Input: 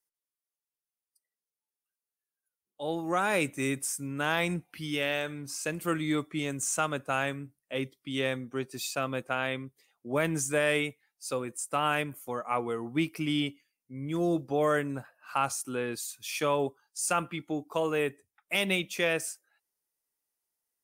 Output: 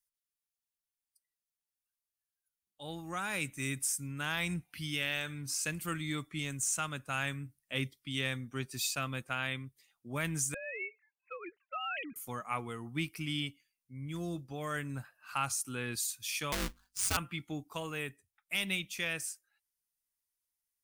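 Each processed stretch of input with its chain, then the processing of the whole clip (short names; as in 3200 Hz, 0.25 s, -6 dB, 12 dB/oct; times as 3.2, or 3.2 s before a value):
10.54–12.16 sine-wave speech + compressor 3:1, threshold -34 dBFS
16.52–17.17 half-waves squared off + notches 50/100/150 Hz + ring modulator 96 Hz
whole clip: low shelf 110 Hz +6.5 dB; vocal rider within 4 dB 0.5 s; bell 490 Hz -13.5 dB 2.3 oct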